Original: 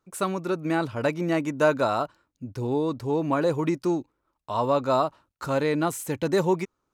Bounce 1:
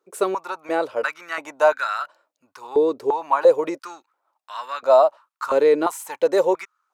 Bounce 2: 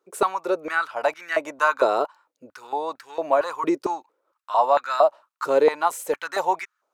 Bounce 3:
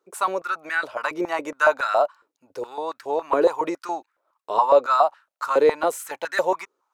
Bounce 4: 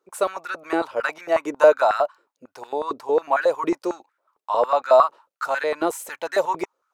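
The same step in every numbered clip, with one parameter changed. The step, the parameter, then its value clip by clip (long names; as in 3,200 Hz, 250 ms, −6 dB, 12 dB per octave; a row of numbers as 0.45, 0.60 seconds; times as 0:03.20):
high-pass on a step sequencer, speed: 2.9, 4.4, 7.2, 11 Hertz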